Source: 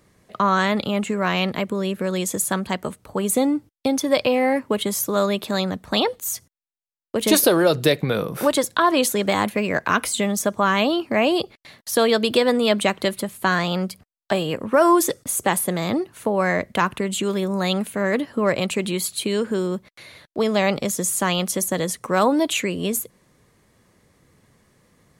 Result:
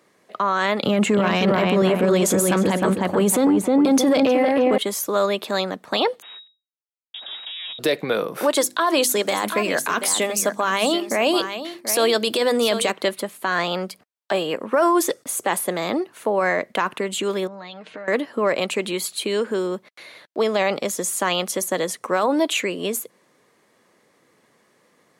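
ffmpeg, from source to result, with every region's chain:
-filter_complex "[0:a]asettb=1/sr,asplit=3[s0][s1][s2];[s0]atrim=end=0.834[s3];[s1]atrim=start=0.83:end=4.78,asetpts=PTS-STARTPTS,afade=t=in:d=0.004:c=qsin,afade=t=out:st=3.946:d=0.004:c=qsin,equalizer=f=74:w=0.36:g=14,asplit=2[s4][s5];[s5]adelay=311,lowpass=f=2100:p=1,volume=0.631,asplit=2[s6][s7];[s7]adelay=311,lowpass=f=2100:p=1,volume=0.35,asplit=2[s8][s9];[s9]adelay=311,lowpass=f=2100:p=1,volume=0.35,asplit=2[s10][s11];[s11]adelay=311,lowpass=f=2100:p=1,volume=0.35[s12];[s4][s6][s8][s10][s12]amix=inputs=5:normalize=0,atrim=end_sample=174195,aeval=exprs='0.841*sin(PI/2*1.58*val(0)/0.841)':c=same[s13];[s2]atrim=start=4.776[s14];[s3][s13]acrossfade=d=0.004:c1=hsin:c2=qsin[s15];[s15][s14]acrossfade=d=0.004:c1=qsin:c2=hsin,asettb=1/sr,asplit=3[s16][s17][s18];[s16]atrim=end=6.224[s19];[s17]atrim=start=6.22:end=7.79,asetpts=PTS-STARTPTS,afade=t=in:d=0.004:c=qsin,afade=t=out:st=1.566:d=0.004:c=qsin,acompressor=threshold=0.0355:ratio=6:attack=3.2:release=140:knee=1:detection=peak,aeval=exprs='max(val(0),0)':c=same,lowpass=f=3200:t=q:w=0.5098,lowpass=f=3200:t=q:w=0.6013,lowpass=f=3200:t=q:w=0.9,lowpass=f=3200:t=q:w=2.563,afreqshift=-3800[s20];[s18]atrim=start=7.786[s21];[s19][s20]acrossfade=d=0.004:c1=hsin:c2=qsin[s22];[s22][s21]acrossfade=d=0.004:c1=qsin:c2=hsin,asettb=1/sr,asplit=3[s23][s24][s25];[s23]atrim=end=8.554[s26];[s24]atrim=start=8.55:end=12.92,asetpts=PTS-STARTPTS,afade=t=in:d=0.004:c=qsin,afade=t=out:st=4.366:d=0.004:c=qsin,bass=f=250:g=3,treble=f=4000:g=9,bandreject=f=50:t=h:w=6,bandreject=f=100:t=h:w=6,bandreject=f=150:t=h:w=6,bandreject=f=200:t=h:w=6,bandreject=f=250:t=h:w=6,bandreject=f=300:t=h:w=6,bandreject=f=350:t=h:w=6,aecho=1:1:735:0.251,atrim=end_sample=192717[s27];[s25]atrim=start=12.916[s28];[s26][s27]acrossfade=d=0.004:c1=hsin:c2=qsin[s29];[s29][s28]acrossfade=d=0.004:c1=qsin:c2=hsin,asettb=1/sr,asplit=3[s30][s31][s32];[s30]atrim=end=17.474[s33];[s31]atrim=start=17.47:end=18.08,asetpts=PTS-STARTPTS,afade=t=in:d=0.004:c=qsin,afade=t=out:st=0.606:d=0.004:c=qsin,lowpass=f=5100:w=0.5412,lowpass=f=5100:w=1.3066,aecho=1:1:6.5:0.63,atrim=end_sample=26901,acompressor=threshold=0.0282:ratio=16:attack=3.2:release=140:knee=1:detection=peak[s34];[s32]atrim=start=18.076[s35];[s33][s34]acrossfade=d=0.004:c1=hsin:c2=qsin[s36];[s36][s35]acrossfade=d=0.004:c1=qsin:c2=hsin,highpass=320,highshelf=f=5400:g=-6,alimiter=limit=0.224:level=0:latency=1:release=14,volume=1.33"

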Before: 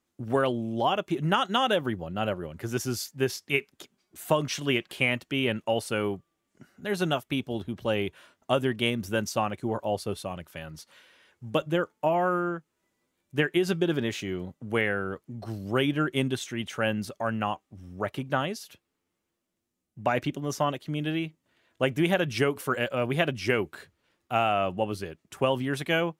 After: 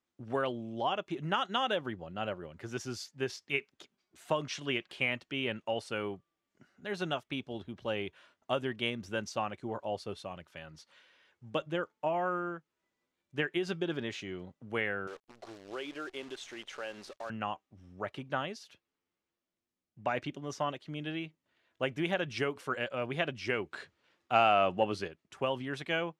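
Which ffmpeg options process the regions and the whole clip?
-filter_complex "[0:a]asettb=1/sr,asplit=3[s0][s1][s2];[s0]atrim=end=15.074[s3];[s1]atrim=start=15.07:end=17.3,asetpts=PTS-STARTPTS,afade=t=in:d=0.004:c=qsin,afade=t=out:st=2.226:d=0.004:c=qsin,lowshelf=f=250:t=q:w=1.5:g=-14,acompressor=threshold=0.02:ratio=2:attack=3.2:release=140:knee=1:detection=peak,acrusher=bits=8:dc=4:mix=0:aa=0.000001[s4];[s2]atrim=start=17.296[s5];[s3][s4]acrossfade=d=0.004:c1=hsin:c2=qsin[s6];[s6][s5]acrossfade=d=0.004:c1=qsin:c2=hsin,asettb=1/sr,asplit=3[s7][s8][s9];[s7]atrim=end=23.714[s10];[s8]atrim=start=23.71:end=25.08,asetpts=PTS-STARTPTS,afade=t=in:d=0.004:c=qsin,afade=t=out:st=1.366:d=0.004:c=qsin,lowpass=12000,lowshelf=f=72:g=-10,acontrast=78[s11];[s9]atrim=start=25.076[s12];[s10][s11]acrossfade=d=0.004:c1=hsin:c2=qsin[s13];[s13][s12]acrossfade=d=0.004:c1=qsin:c2=hsin,lowpass=5800,lowshelf=f=370:g=-5.5,volume=0.531"

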